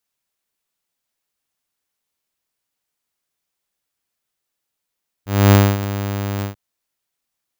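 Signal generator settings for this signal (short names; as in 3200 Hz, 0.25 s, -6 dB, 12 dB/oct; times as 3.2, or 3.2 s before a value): ADSR saw 100 Hz, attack 0.257 s, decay 0.255 s, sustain -14 dB, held 1.18 s, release 0.11 s -4 dBFS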